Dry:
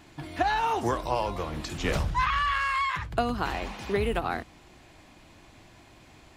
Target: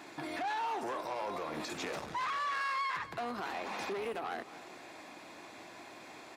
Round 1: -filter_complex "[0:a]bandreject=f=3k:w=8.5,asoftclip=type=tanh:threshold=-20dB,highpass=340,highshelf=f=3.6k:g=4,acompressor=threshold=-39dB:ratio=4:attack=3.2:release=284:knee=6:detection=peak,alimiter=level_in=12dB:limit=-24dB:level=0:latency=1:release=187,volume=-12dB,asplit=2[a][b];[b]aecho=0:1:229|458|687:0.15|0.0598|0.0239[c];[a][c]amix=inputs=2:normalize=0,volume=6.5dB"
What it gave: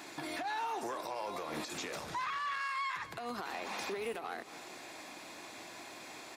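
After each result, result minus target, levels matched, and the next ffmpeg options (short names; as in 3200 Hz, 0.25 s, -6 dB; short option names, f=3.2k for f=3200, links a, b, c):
compressor: peak gain reduction +14 dB; 8000 Hz band +6.5 dB; soft clip: distortion -8 dB
-filter_complex "[0:a]bandreject=f=3k:w=8.5,asoftclip=type=tanh:threshold=-20dB,highpass=340,highshelf=f=3.6k:g=4,alimiter=level_in=12dB:limit=-24dB:level=0:latency=1:release=187,volume=-12dB,asplit=2[a][b];[b]aecho=0:1:229|458|687:0.15|0.0598|0.0239[c];[a][c]amix=inputs=2:normalize=0,volume=6.5dB"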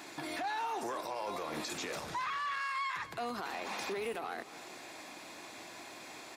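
8000 Hz band +6.5 dB; soft clip: distortion -8 dB
-filter_complex "[0:a]bandreject=f=3k:w=8.5,asoftclip=type=tanh:threshold=-20dB,highpass=340,highshelf=f=3.6k:g=-5,alimiter=level_in=12dB:limit=-24dB:level=0:latency=1:release=187,volume=-12dB,asplit=2[a][b];[b]aecho=0:1:229|458|687:0.15|0.0598|0.0239[c];[a][c]amix=inputs=2:normalize=0,volume=6.5dB"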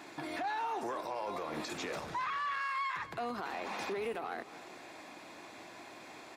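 soft clip: distortion -8 dB
-filter_complex "[0:a]bandreject=f=3k:w=8.5,asoftclip=type=tanh:threshold=-28dB,highpass=340,highshelf=f=3.6k:g=-5,alimiter=level_in=12dB:limit=-24dB:level=0:latency=1:release=187,volume=-12dB,asplit=2[a][b];[b]aecho=0:1:229|458|687:0.15|0.0598|0.0239[c];[a][c]amix=inputs=2:normalize=0,volume=6.5dB"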